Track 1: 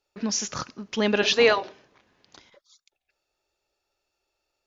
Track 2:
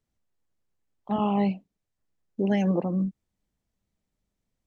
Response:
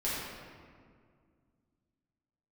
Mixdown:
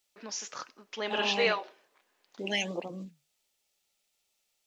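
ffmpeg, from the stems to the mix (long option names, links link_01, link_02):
-filter_complex "[0:a]lowpass=frequency=3400:poles=1,aemphasis=mode=production:type=bsi,volume=-2.5dB[link_01];[1:a]aexciter=amount=11:drive=4.7:freq=2100,volume=-2dB[link_02];[link_01][link_02]amix=inputs=2:normalize=0,bass=frequency=250:gain=-14,treble=frequency=4000:gain=-5,flanger=delay=2.1:depth=8.7:regen=-76:speed=1.4:shape=triangular"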